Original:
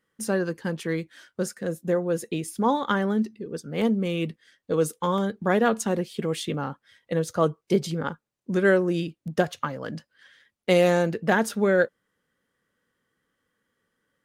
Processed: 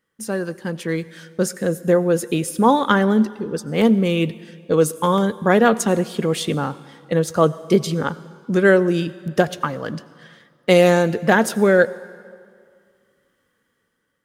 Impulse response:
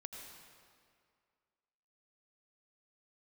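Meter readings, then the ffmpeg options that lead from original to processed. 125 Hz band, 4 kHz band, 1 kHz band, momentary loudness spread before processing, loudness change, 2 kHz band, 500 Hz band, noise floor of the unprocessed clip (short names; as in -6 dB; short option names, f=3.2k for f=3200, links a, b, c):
+6.5 dB, +7.0 dB, +7.0 dB, 11 LU, +6.5 dB, +6.5 dB, +6.5 dB, -81 dBFS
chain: -filter_complex "[0:a]dynaudnorm=f=290:g=7:m=8.5dB,asplit=2[a][b];[1:a]atrim=start_sample=2205,highshelf=f=8.5k:g=9.5[c];[b][c]afir=irnorm=-1:irlink=0,volume=-10dB[d];[a][d]amix=inputs=2:normalize=0,volume=-1dB"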